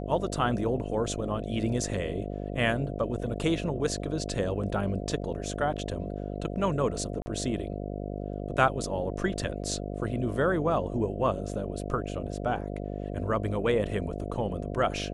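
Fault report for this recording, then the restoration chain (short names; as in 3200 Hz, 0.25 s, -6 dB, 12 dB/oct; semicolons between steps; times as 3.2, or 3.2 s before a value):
buzz 50 Hz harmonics 14 -35 dBFS
7.22–7.26 gap 40 ms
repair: de-hum 50 Hz, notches 14; interpolate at 7.22, 40 ms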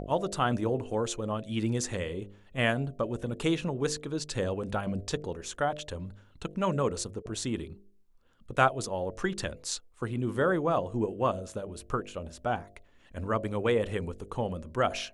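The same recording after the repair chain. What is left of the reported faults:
none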